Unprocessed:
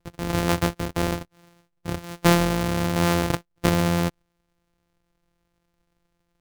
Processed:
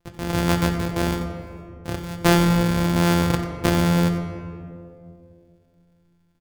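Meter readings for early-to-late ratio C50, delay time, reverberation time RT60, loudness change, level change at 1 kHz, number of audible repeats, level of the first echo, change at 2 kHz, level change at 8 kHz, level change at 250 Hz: 6.0 dB, 92 ms, 2.4 s, +2.5 dB, +1.0 dB, 1, −13.5 dB, +1.5 dB, +0.5 dB, +3.5 dB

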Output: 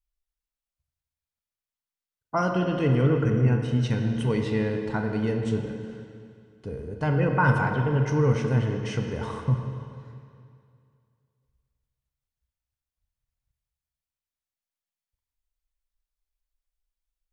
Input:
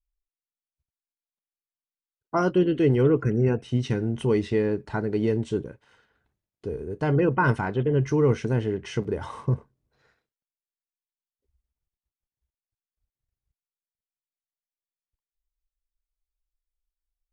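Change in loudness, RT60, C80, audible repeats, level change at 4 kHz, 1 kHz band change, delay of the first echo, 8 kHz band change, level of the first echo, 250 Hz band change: −0.5 dB, 2.3 s, 5.5 dB, no echo audible, +1.0 dB, +1.5 dB, no echo audible, can't be measured, no echo audible, −1.0 dB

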